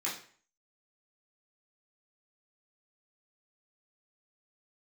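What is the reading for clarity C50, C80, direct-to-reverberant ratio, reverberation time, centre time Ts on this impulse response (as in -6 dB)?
6.5 dB, 11.0 dB, -7.5 dB, 0.45 s, 32 ms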